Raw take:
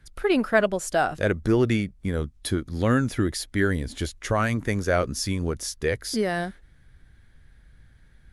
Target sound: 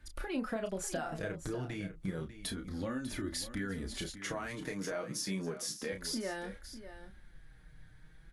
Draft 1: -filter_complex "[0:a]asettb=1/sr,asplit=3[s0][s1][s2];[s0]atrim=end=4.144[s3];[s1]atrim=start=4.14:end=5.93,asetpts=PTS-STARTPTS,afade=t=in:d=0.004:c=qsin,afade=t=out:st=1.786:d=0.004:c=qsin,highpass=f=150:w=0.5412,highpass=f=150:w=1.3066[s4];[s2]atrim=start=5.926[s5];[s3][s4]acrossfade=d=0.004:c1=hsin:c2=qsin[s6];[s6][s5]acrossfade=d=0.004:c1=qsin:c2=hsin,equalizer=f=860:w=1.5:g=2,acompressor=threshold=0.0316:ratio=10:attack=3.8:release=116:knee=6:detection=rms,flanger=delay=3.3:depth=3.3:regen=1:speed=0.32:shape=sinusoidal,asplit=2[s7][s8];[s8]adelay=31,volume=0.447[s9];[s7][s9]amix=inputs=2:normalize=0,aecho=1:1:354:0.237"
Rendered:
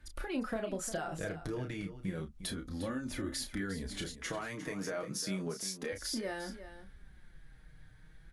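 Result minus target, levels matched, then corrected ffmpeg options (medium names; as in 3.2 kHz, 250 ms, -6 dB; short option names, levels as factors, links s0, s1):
echo 243 ms early
-filter_complex "[0:a]asettb=1/sr,asplit=3[s0][s1][s2];[s0]atrim=end=4.144[s3];[s1]atrim=start=4.14:end=5.93,asetpts=PTS-STARTPTS,afade=t=in:d=0.004:c=qsin,afade=t=out:st=1.786:d=0.004:c=qsin,highpass=f=150:w=0.5412,highpass=f=150:w=1.3066[s4];[s2]atrim=start=5.926[s5];[s3][s4]acrossfade=d=0.004:c1=hsin:c2=qsin[s6];[s6][s5]acrossfade=d=0.004:c1=qsin:c2=hsin,equalizer=f=860:w=1.5:g=2,acompressor=threshold=0.0316:ratio=10:attack=3.8:release=116:knee=6:detection=rms,flanger=delay=3.3:depth=3.3:regen=1:speed=0.32:shape=sinusoidal,asplit=2[s7][s8];[s8]adelay=31,volume=0.447[s9];[s7][s9]amix=inputs=2:normalize=0,aecho=1:1:597:0.237"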